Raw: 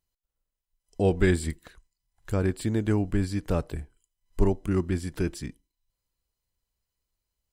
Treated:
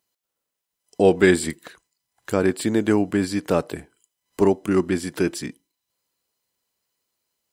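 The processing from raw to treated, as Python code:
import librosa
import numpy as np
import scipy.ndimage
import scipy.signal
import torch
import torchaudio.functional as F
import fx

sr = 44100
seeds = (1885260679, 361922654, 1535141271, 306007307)

y = scipy.signal.sosfilt(scipy.signal.butter(2, 230.0, 'highpass', fs=sr, output='sos'), x)
y = y * librosa.db_to_amplitude(9.0)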